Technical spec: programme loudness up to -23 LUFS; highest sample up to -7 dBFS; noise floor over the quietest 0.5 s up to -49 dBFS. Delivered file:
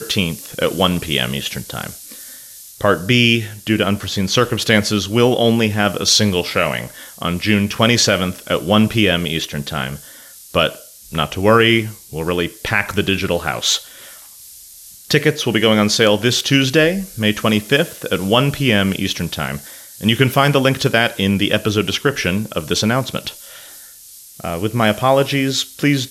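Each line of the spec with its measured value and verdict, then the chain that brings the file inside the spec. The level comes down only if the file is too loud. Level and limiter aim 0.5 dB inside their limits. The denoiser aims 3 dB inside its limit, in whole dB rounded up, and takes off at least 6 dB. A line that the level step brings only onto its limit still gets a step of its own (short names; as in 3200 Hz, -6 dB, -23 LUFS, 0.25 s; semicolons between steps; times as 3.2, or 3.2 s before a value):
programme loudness -16.5 LUFS: fail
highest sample -1.5 dBFS: fail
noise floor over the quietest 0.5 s -41 dBFS: fail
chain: denoiser 6 dB, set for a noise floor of -41 dBFS; gain -7 dB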